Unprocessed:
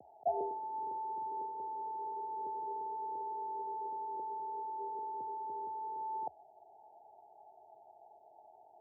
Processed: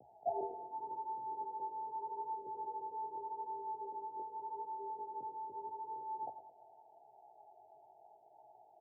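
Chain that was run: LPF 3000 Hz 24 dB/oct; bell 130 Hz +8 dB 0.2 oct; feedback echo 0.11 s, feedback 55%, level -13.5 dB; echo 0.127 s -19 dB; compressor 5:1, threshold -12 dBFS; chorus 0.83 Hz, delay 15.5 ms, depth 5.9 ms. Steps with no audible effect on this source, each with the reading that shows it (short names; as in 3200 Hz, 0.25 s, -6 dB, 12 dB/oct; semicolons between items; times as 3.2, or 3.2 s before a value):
LPF 3000 Hz: input band ends at 910 Hz; compressor, threshold -12 dBFS: input peak -23.5 dBFS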